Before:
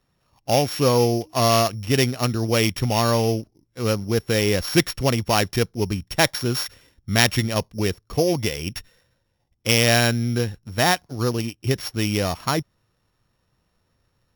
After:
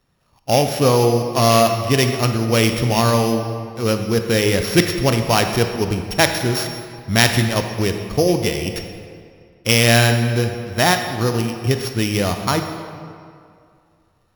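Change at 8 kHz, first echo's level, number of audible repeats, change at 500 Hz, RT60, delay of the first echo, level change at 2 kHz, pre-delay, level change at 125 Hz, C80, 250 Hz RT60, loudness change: +3.5 dB, none, none, +4.0 dB, 2.3 s, none, +4.0 dB, 19 ms, +4.5 dB, 7.5 dB, 2.3 s, +4.0 dB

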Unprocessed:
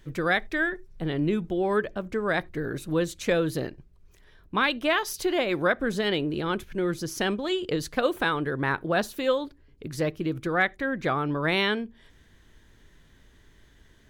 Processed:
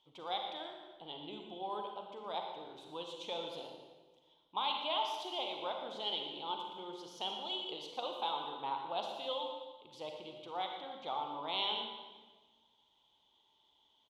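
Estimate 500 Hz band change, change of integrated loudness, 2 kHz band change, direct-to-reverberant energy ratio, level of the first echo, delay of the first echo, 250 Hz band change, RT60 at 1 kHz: -16.0 dB, -13.0 dB, -23.0 dB, 2.0 dB, -12.0 dB, 0.118 s, -23.0 dB, 1.2 s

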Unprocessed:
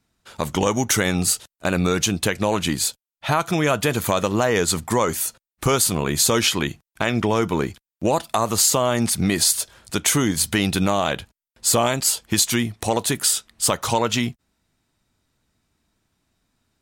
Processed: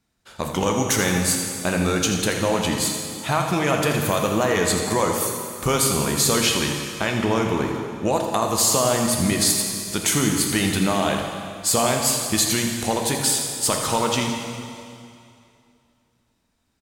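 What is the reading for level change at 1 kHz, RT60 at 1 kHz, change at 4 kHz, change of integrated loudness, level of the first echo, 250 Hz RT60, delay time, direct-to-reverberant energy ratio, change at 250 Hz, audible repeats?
0.0 dB, 2.5 s, 0.0 dB, -0.5 dB, -10.0 dB, 2.5 s, 82 ms, 1.5 dB, 0.0 dB, 1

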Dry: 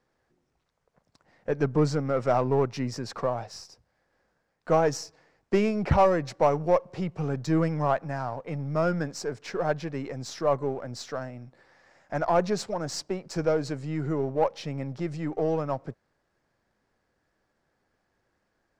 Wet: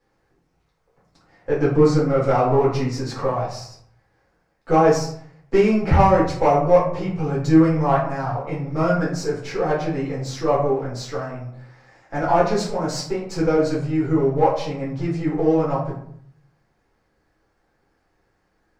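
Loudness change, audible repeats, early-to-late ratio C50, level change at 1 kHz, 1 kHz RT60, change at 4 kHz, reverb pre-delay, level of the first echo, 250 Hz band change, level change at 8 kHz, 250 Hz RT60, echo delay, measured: +7.5 dB, none, 5.0 dB, +8.0 dB, 0.65 s, +5.0 dB, 4 ms, none, +9.0 dB, +4.0 dB, 0.70 s, none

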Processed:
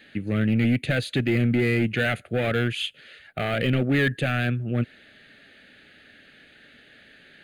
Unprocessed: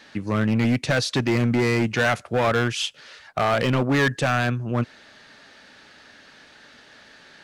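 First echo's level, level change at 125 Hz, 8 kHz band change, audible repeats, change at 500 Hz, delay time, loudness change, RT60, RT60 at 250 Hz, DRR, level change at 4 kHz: none, 0.0 dB, -11.5 dB, none, -3.5 dB, none, -2.0 dB, none, none, none, -3.0 dB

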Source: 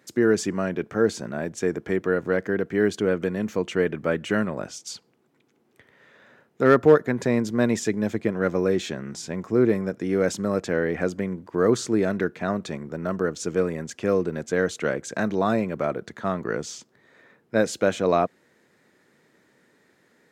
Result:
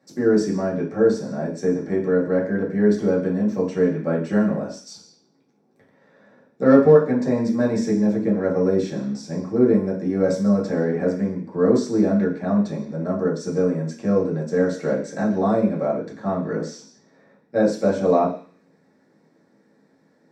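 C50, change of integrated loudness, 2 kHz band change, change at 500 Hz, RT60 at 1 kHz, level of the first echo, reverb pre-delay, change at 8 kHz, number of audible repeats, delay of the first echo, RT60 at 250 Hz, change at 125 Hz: 8.0 dB, +3.5 dB, -4.5 dB, +3.0 dB, 0.45 s, none, 3 ms, n/a, none, none, 0.45 s, +4.0 dB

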